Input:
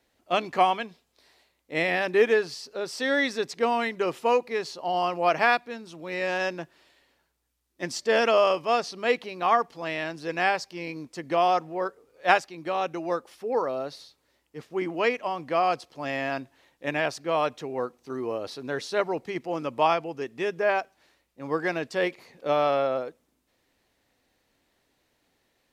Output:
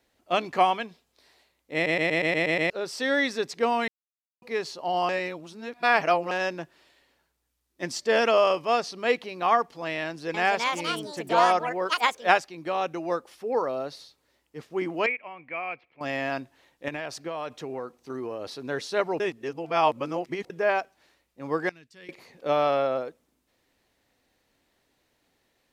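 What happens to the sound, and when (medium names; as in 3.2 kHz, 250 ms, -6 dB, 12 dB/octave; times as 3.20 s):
1.74 s: stutter in place 0.12 s, 8 plays
3.88–4.42 s: mute
5.09–6.31 s: reverse
10.03–12.62 s: ever faster or slower copies 311 ms, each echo +5 st, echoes 2
15.06–16.01 s: four-pole ladder low-pass 2.4 kHz, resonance 85%
16.88–18.57 s: compression, threshold -29 dBFS
19.20–20.50 s: reverse
21.69–22.09 s: amplifier tone stack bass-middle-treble 6-0-2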